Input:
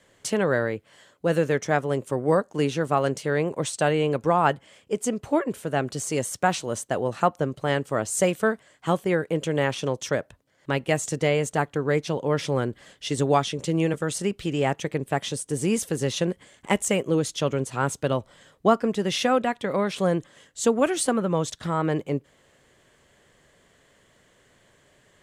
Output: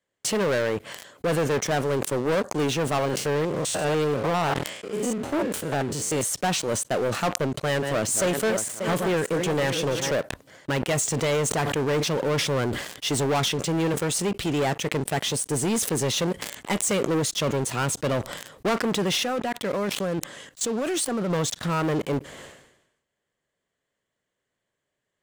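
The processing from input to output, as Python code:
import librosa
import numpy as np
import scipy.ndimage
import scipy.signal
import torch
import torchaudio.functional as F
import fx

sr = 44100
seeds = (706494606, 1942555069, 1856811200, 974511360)

y = fx.spec_steps(x, sr, hold_ms=100, at=(2.99, 6.22), fade=0.02)
y = fx.reverse_delay_fb(y, sr, ms=294, feedback_pct=49, wet_db=-10.0, at=(7.51, 10.11))
y = fx.sustainer(y, sr, db_per_s=110.0, at=(10.94, 13.53), fade=0.02)
y = fx.level_steps(y, sr, step_db=15, at=(19.17, 21.3))
y = fx.leveller(y, sr, passes=5)
y = fx.low_shelf(y, sr, hz=100.0, db=-6.0)
y = fx.sustainer(y, sr, db_per_s=66.0)
y = F.gain(torch.from_numpy(y), -12.0).numpy()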